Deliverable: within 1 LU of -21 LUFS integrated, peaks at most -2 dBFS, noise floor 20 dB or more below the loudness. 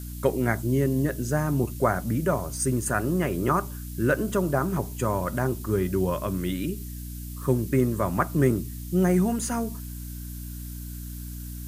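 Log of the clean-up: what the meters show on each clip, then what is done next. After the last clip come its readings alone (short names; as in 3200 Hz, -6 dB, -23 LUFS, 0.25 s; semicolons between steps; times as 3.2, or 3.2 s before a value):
hum 60 Hz; harmonics up to 300 Hz; hum level -35 dBFS; noise floor -36 dBFS; noise floor target -46 dBFS; loudness -26.0 LUFS; peak -8.0 dBFS; loudness target -21.0 LUFS
-> notches 60/120/180/240/300 Hz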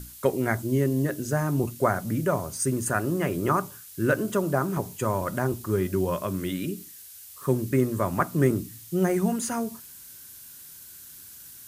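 hum none; noise floor -46 dBFS; noise floor target -47 dBFS
-> noise print and reduce 6 dB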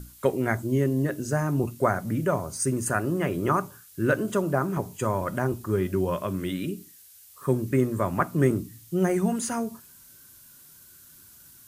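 noise floor -52 dBFS; loudness -26.5 LUFS; peak -9.0 dBFS; loudness target -21.0 LUFS
-> gain +5.5 dB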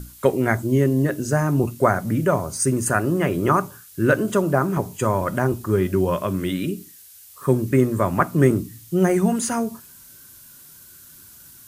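loudness -21.0 LUFS; peak -3.5 dBFS; noise floor -46 dBFS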